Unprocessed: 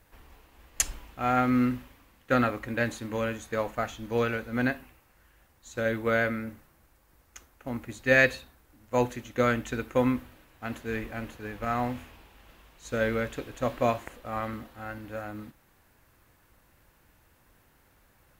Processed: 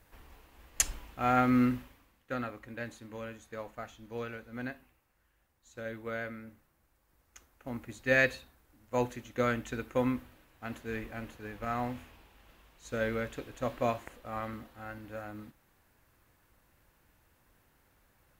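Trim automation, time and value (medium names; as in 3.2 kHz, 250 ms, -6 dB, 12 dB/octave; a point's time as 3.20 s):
1.79 s -1.5 dB
2.34 s -12 dB
6.43 s -12 dB
7.69 s -5 dB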